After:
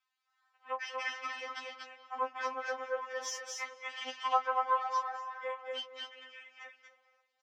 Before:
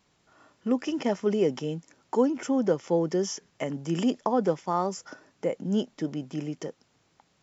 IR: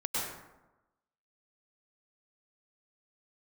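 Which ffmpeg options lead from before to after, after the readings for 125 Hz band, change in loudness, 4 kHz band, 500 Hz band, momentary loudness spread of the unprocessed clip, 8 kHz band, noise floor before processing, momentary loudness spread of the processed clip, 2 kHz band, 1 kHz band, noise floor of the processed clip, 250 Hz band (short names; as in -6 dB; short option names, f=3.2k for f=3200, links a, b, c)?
under -40 dB, -8.0 dB, -0.5 dB, -13.5 dB, 10 LU, n/a, -69 dBFS, 17 LU, +5.0 dB, +0.5 dB, -82 dBFS, -34.5 dB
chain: -filter_complex "[0:a]highpass=f=1.2k:w=0.5412,highpass=f=1.2k:w=1.3066,aemphasis=mode=reproduction:type=riaa,asplit=2[a][b];[b]adelay=23,volume=-10dB[c];[a][c]amix=inputs=2:normalize=0,aecho=1:1:237|789:0.708|0.133,asplit=2[d][e];[e]aeval=exprs='0.0841*sin(PI/2*1.78*val(0)/0.0841)':c=same,volume=-5dB[f];[d][f]amix=inputs=2:normalize=0,afwtdn=0.00501,asplit=2[g][h];[1:a]atrim=start_sample=2205,asetrate=24255,aresample=44100,lowpass=4.4k[i];[h][i]afir=irnorm=-1:irlink=0,volume=-22.5dB[j];[g][j]amix=inputs=2:normalize=0,afftfilt=real='re*3.46*eq(mod(b,12),0)':imag='im*3.46*eq(mod(b,12),0)':win_size=2048:overlap=0.75"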